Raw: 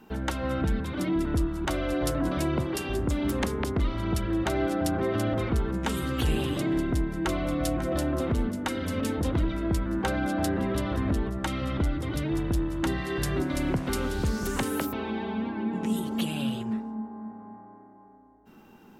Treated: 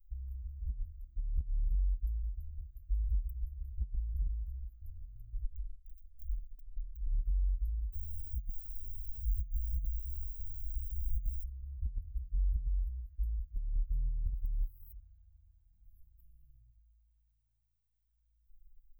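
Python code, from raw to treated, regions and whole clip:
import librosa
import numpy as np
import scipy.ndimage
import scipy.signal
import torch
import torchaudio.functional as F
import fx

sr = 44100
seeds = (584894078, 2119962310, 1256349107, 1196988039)

y = fx.chain(x, sr, fx.bass_treble(bass_db=-3, treble_db=-3),
    fx.power_curve(exponent=3.0), at=(5.44, 7.06))
y = fx.dmg_noise_colour(y, sr, seeds[0], colour='pink', level_db=-49.0, at=(7.92, 11.43), fade=0.02)
y = fx.bell_lfo(y, sr, hz=1.7, low_hz=330.0, high_hz=4400.0, db=18, at=(7.92, 11.43), fade=0.02)
y = scipy.signal.sosfilt(scipy.signal.cheby2(4, 80, [200.0, 8800.0], 'bandstop', fs=sr, output='sos'), y)
y = fx.over_compress(y, sr, threshold_db=-44.0, ratio=-0.5)
y = y * librosa.db_to_amplitude(14.0)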